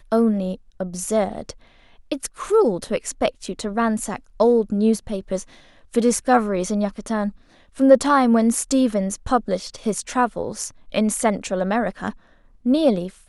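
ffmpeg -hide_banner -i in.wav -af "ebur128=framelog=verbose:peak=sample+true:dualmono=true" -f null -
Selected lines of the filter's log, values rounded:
Integrated loudness:
  I:         -18.3 LUFS
  Threshold: -28.8 LUFS
Loudness range:
  LRA:         4.7 LU
  Threshold: -38.5 LUFS
  LRA low:   -21.1 LUFS
  LRA high:  -16.4 LUFS
Sample peak:
  Peak:       -1.6 dBFS
True peak:
  Peak:       -1.6 dBFS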